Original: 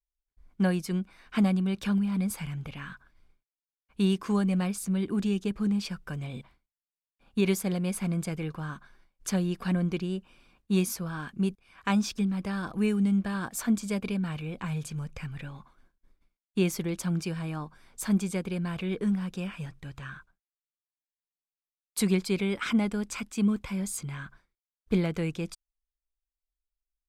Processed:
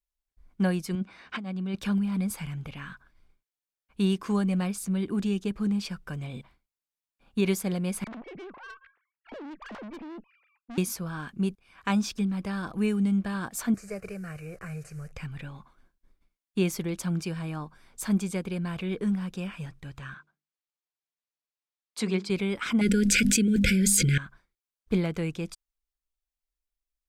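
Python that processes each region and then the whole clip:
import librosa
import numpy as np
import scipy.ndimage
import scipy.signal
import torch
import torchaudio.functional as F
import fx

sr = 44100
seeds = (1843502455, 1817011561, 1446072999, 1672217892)

y = fx.chain(x, sr, fx.bandpass_edges(low_hz=100.0, high_hz=5800.0),
    fx.over_compress(threshold_db=-32.0, ratio=-1.0), at=(0.95, 1.76))
y = fx.chain(y, sr, fx.sine_speech(),
    fx.steep_lowpass(hz=2700.0, slope=36),
    fx.tube_stage(drive_db=39.0, bias=0.6), at=(8.04, 10.78))
y = fx.chain(y, sr, fx.delta_mod(bps=64000, step_db=-49.0),
    fx.fixed_phaser(hz=930.0, stages=6), at=(13.74, 15.12))
y = fx.chain(y, sr, fx.bandpass_edges(low_hz=180.0, high_hz=6100.0),
    fx.hum_notches(base_hz=50, count=9), at=(20.14, 22.3))
y = fx.chain(y, sr, fx.brickwall_bandstop(low_hz=550.0, high_hz=1400.0),
    fx.hum_notches(base_hz=50, count=5),
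    fx.env_flatten(amount_pct=100), at=(22.81, 24.18))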